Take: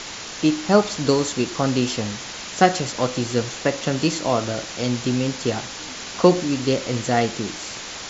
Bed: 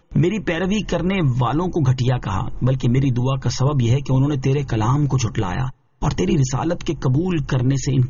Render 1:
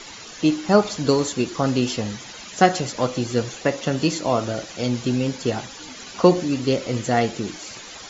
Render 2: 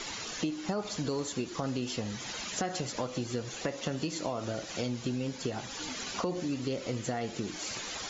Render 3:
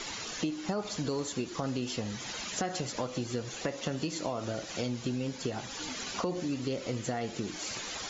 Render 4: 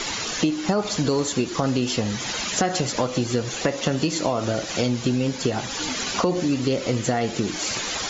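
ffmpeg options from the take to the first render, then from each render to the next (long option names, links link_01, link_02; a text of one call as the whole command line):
ffmpeg -i in.wav -af "afftdn=noise_reduction=11:noise_floor=-34" out.wav
ffmpeg -i in.wav -af "alimiter=limit=-11dB:level=0:latency=1:release=101,acompressor=threshold=-32dB:ratio=4" out.wav
ffmpeg -i in.wav -af anull out.wav
ffmpeg -i in.wav -af "volume=11dB" out.wav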